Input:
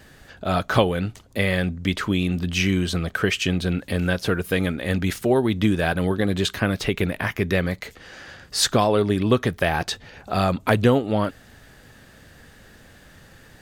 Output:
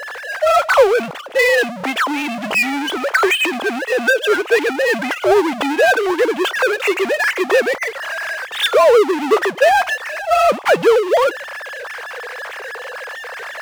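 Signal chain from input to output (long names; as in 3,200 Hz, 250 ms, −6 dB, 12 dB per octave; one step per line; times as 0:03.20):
three sine waves on the formant tracks
power curve on the samples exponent 0.5
low shelf with overshoot 360 Hz −10 dB, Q 1.5
level +1.5 dB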